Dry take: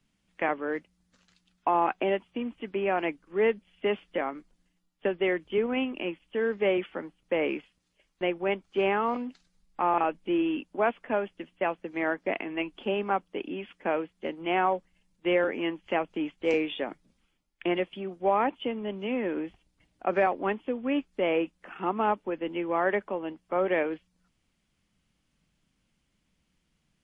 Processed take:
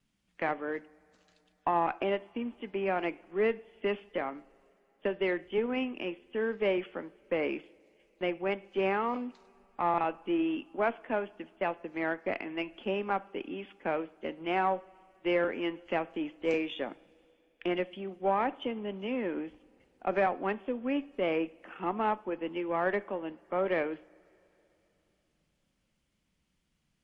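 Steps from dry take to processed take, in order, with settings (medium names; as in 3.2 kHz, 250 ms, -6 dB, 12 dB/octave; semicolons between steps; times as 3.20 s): vibrato 2 Hz 28 cents; two-slope reverb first 0.55 s, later 3.6 s, from -18 dB, DRR 16.5 dB; Chebyshev shaper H 6 -28 dB, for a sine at -6 dBFS; trim -3.5 dB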